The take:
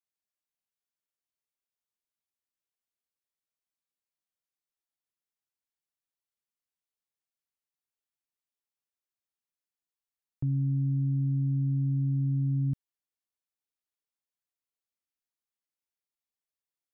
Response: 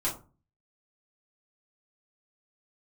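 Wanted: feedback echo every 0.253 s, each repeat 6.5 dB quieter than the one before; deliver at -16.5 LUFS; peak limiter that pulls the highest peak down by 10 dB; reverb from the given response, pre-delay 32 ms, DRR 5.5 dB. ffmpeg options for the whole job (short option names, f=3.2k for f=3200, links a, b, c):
-filter_complex "[0:a]alimiter=level_in=9.5dB:limit=-24dB:level=0:latency=1,volume=-9.5dB,aecho=1:1:253|506|759|1012|1265|1518:0.473|0.222|0.105|0.0491|0.0231|0.0109,asplit=2[a][b];[1:a]atrim=start_sample=2205,adelay=32[c];[b][c]afir=irnorm=-1:irlink=0,volume=-12dB[d];[a][d]amix=inputs=2:normalize=0,volume=25dB"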